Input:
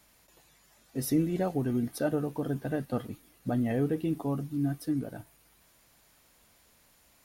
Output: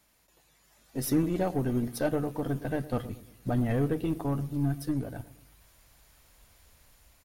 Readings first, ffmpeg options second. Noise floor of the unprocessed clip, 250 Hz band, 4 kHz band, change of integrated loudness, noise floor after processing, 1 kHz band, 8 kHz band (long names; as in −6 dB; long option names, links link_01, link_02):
−64 dBFS, 0.0 dB, +2.0 dB, +0.5 dB, −66 dBFS, +2.0 dB, +1.5 dB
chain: -filter_complex "[0:a]asplit=2[link_01][link_02];[link_02]adelay=113,lowpass=frequency=930:poles=1,volume=-15dB,asplit=2[link_03][link_04];[link_04]adelay=113,lowpass=frequency=930:poles=1,volume=0.48,asplit=2[link_05][link_06];[link_06]adelay=113,lowpass=frequency=930:poles=1,volume=0.48,asplit=2[link_07][link_08];[link_08]adelay=113,lowpass=frequency=930:poles=1,volume=0.48[link_09];[link_03][link_05][link_07][link_09]amix=inputs=4:normalize=0[link_10];[link_01][link_10]amix=inputs=2:normalize=0,dynaudnorm=framelen=160:gausssize=9:maxgain=6dB,asubboost=boost=4.5:cutoff=94,aeval=exprs='0.299*(cos(1*acos(clip(val(0)/0.299,-1,1)))-cos(1*PI/2))+0.0133*(cos(8*acos(clip(val(0)/0.299,-1,1)))-cos(8*PI/2))':channel_layout=same,volume=-4.5dB"